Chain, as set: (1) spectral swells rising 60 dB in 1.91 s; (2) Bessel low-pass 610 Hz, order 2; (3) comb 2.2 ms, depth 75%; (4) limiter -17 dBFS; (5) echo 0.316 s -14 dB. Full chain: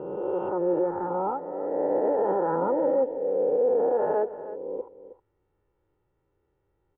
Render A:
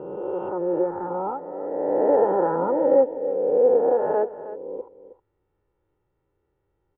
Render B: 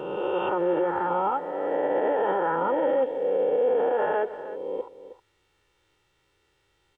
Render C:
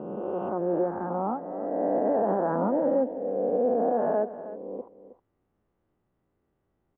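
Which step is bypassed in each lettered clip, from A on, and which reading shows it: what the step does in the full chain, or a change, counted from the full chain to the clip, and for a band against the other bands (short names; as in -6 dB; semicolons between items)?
4, mean gain reduction 1.5 dB; 2, 2 kHz band +11.5 dB; 3, 125 Hz band +5.0 dB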